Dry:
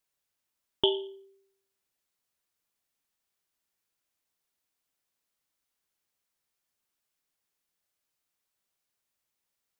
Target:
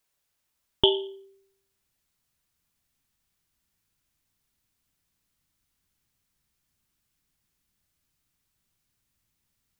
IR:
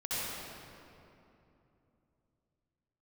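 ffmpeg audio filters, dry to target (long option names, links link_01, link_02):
-af "asubboost=boost=6.5:cutoff=200,volume=5.5dB"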